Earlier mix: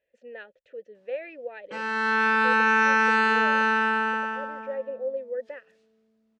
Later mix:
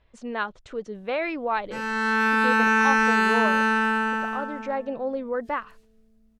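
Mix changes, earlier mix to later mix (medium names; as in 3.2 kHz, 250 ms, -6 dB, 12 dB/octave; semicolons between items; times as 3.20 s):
speech: remove vowel filter e; background: remove band-pass 280–5100 Hz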